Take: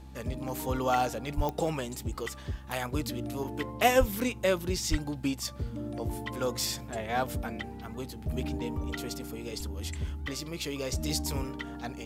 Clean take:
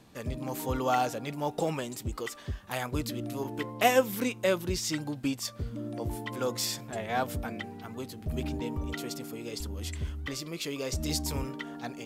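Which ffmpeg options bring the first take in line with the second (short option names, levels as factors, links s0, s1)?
-filter_complex "[0:a]adeclick=t=4,bandreject=f=65.6:t=h:w=4,bandreject=f=131.2:t=h:w=4,bandreject=f=196.8:t=h:w=4,bandreject=f=262.4:t=h:w=4,bandreject=f=328:t=h:w=4,bandreject=f=860:w=30,asplit=3[s0][s1][s2];[s0]afade=t=out:st=1.36:d=0.02[s3];[s1]highpass=f=140:w=0.5412,highpass=f=140:w=1.3066,afade=t=in:st=1.36:d=0.02,afade=t=out:st=1.48:d=0.02[s4];[s2]afade=t=in:st=1.48:d=0.02[s5];[s3][s4][s5]amix=inputs=3:normalize=0,asplit=3[s6][s7][s8];[s6]afade=t=out:st=3.99:d=0.02[s9];[s7]highpass=f=140:w=0.5412,highpass=f=140:w=1.3066,afade=t=in:st=3.99:d=0.02,afade=t=out:st=4.11:d=0.02[s10];[s8]afade=t=in:st=4.11:d=0.02[s11];[s9][s10][s11]amix=inputs=3:normalize=0,asplit=3[s12][s13][s14];[s12]afade=t=out:st=4.9:d=0.02[s15];[s13]highpass=f=140:w=0.5412,highpass=f=140:w=1.3066,afade=t=in:st=4.9:d=0.02,afade=t=out:st=5.02:d=0.02[s16];[s14]afade=t=in:st=5.02:d=0.02[s17];[s15][s16][s17]amix=inputs=3:normalize=0"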